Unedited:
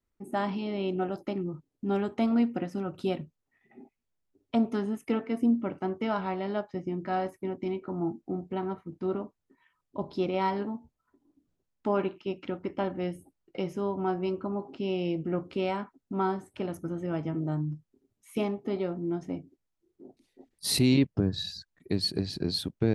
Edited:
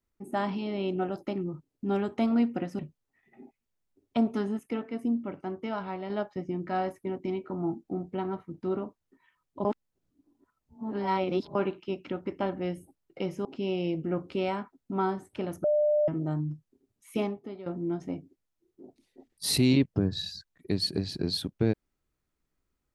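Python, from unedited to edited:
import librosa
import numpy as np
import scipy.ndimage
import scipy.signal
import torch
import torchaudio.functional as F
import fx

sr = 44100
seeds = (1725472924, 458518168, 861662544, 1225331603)

y = fx.edit(x, sr, fx.cut(start_s=2.79, length_s=0.38),
    fx.clip_gain(start_s=4.97, length_s=1.51, db=-4.0),
    fx.reverse_span(start_s=10.03, length_s=1.9),
    fx.cut(start_s=13.83, length_s=0.83),
    fx.bleep(start_s=16.85, length_s=0.44, hz=598.0, db=-21.0),
    fx.fade_out_to(start_s=18.46, length_s=0.41, curve='qua', floor_db=-13.0), tone=tone)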